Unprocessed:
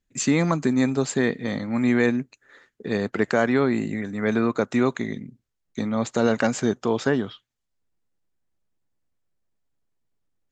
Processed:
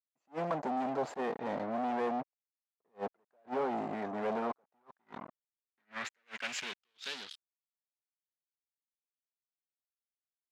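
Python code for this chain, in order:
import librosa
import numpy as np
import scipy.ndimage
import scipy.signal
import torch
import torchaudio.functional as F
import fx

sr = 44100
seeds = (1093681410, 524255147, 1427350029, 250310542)

y = fx.fuzz(x, sr, gain_db=32.0, gate_db=-39.0)
y = fx.filter_sweep_bandpass(y, sr, from_hz=720.0, to_hz=5300.0, start_s=4.54, end_s=7.65, q=2.2)
y = fx.attack_slew(y, sr, db_per_s=390.0)
y = F.gain(torch.from_numpy(y), -8.5).numpy()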